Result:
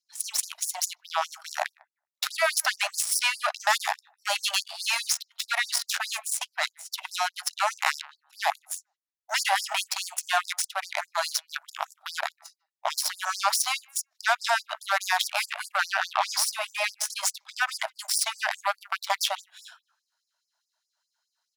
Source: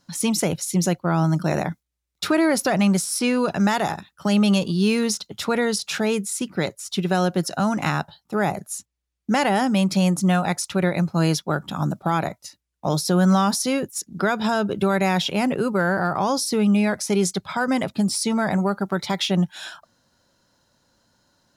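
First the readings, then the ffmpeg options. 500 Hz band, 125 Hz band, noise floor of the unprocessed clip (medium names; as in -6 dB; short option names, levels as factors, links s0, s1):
-12.5 dB, under -40 dB, -79 dBFS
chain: -filter_complex "[0:a]bandreject=f=50:t=h:w=6,bandreject=f=100:t=h:w=6,bandreject=f=150:t=h:w=6,bandreject=f=200:t=h:w=6,bandreject=f=250:t=h:w=6,bandreject=f=300:t=h:w=6,bandreject=f=350:t=h:w=6,bandreject=f=400:t=h:w=6,bandreject=f=450:t=h:w=6,acrossover=split=210|720|4000[s0][s1][s2][s3];[s0]acompressor=threshold=0.0158:ratio=6[s4];[s2]asplit=2[s5][s6];[s6]adelay=151,lowpass=f=1200:p=1,volume=0.335,asplit=2[s7][s8];[s8]adelay=151,lowpass=f=1200:p=1,volume=0.29,asplit=2[s9][s10];[s10]adelay=151,lowpass=f=1200:p=1,volume=0.29[s11];[s5][s7][s9][s11]amix=inputs=4:normalize=0[s12];[s4][s1][s12][s3]amix=inputs=4:normalize=0,dynaudnorm=f=260:g=3:m=1.58,aeval=exprs='0.531*(cos(1*acos(clip(val(0)/0.531,-1,1)))-cos(1*PI/2))+0.0668*(cos(7*acos(clip(val(0)/0.531,-1,1)))-cos(7*PI/2))':c=same,alimiter=level_in=3.35:limit=0.891:release=50:level=0:latency=1,afftfilt=real='re*gte(b*sr/1024,560*pow(4600/560,0.5+0.5*sin(2*PI*4.8*pts/sr)))':imag='im*gte(b*sr/1024,560*pow(4600/560,0.5+0.5*sin(2*PI*4.8*pts/sr)))':win_size=1024:overlap=0.75,volume=0.398"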